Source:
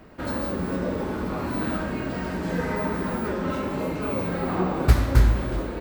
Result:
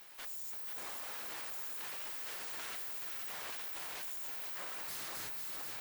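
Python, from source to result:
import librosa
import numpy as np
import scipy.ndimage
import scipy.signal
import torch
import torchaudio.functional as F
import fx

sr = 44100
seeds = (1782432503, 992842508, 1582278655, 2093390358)

y = np.abs(x)
y = np.diff(y, prepend=0.0)
y = fx.tube_stage(y, sr, drive_db=51.0, bias=0.3)
y = fx.echo_feedback(y, sr, ms=483, feedback_pct=48, wet_db=-5.5)
y = y * librosa.db_to_amplitude(9.0)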